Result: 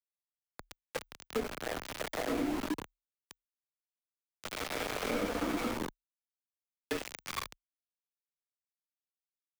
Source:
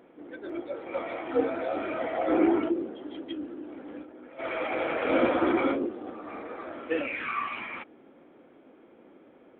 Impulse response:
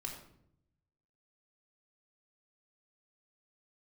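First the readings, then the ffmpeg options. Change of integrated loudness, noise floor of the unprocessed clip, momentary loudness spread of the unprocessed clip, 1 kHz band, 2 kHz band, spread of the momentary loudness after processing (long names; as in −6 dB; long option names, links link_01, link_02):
−7.0 dB, −56 dBFS, 17 LU, −9.0 dB, −7.0 dB, 14 LU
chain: -filter_complex "[0:a]aeval=exprs='val(0)*gte(abs(val(0)),0.0531)':channel_layout=same,acrossover=split=120[link_01][link_02];[link_02]acompressor=threshold=-29dB:ratio=6[link_03];[link_01][link_03]amix=inputs=2:normalize=0,afreqshift=-39,volume=-1.5dB"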